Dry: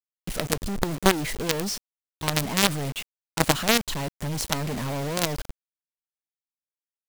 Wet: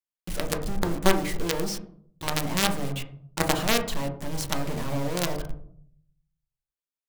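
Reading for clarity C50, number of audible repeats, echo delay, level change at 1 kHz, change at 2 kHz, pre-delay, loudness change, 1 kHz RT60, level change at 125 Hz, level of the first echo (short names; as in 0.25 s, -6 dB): 10.0 dB, none, none, -1.5 dB, -2.5 dB, 3 ms, -2.5 dB, 0.55 s, -2.0 dB, none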